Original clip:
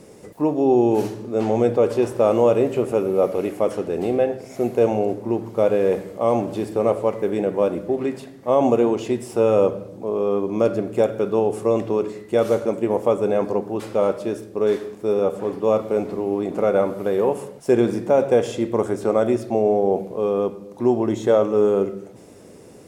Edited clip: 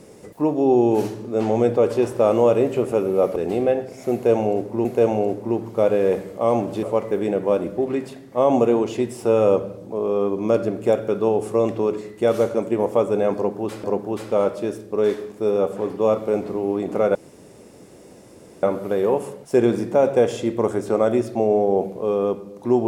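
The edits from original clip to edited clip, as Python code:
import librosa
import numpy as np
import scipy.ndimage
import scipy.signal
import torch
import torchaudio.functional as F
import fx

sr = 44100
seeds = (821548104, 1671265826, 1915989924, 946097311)

y = fx.edit(x, sr, fx.cut(start_s=3.36, length_s=0.52),
    fx.repeat(start_s=4.65, length_s=0.72, count=2),
    fx.cut(start_s=6.63, length_s=0.31),
    fx.repeat(start_s=13.47, length_s=0.48, count=2),
    fx.insert_room_tone(at_s=16.78, length_s=1.48), tone=tone)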